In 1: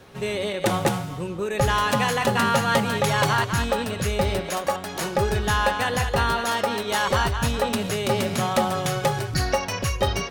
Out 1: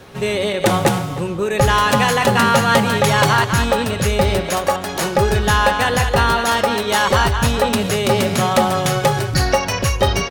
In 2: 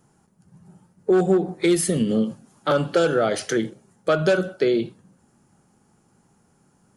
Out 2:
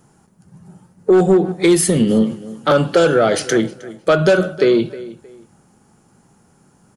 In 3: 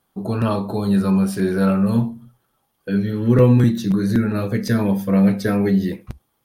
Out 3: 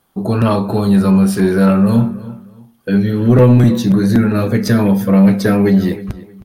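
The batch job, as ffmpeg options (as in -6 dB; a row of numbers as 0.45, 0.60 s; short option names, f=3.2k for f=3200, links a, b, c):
-filter_complex "[0:a]asplit=2[a][b];[b]adelay=313,lowpass=f=3.7k:p=1,volume=-18dB,asplit=2[c][d];[d]adelay=313,lowpass=f=3.7k:p=1,volume=0.27[e];[a][c][e]amix=inputs=3:normalize=0,acontrast=90"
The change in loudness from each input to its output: +7.0, +6.5, +6.0 LU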